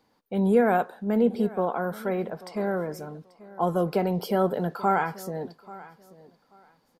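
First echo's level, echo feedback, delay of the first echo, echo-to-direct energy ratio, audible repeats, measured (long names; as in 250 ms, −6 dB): −19.5 dB, 21%, 836 ms, −19.5 dB, 2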